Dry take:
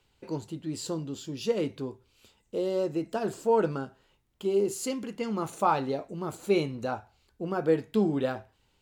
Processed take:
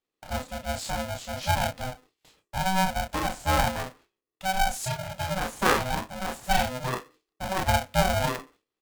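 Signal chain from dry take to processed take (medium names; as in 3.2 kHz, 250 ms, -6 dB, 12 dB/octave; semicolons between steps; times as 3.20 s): doubling 32 ms -2 dB; gate with hold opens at -41 dBFS; polarity switched at an audio rate 380 Hz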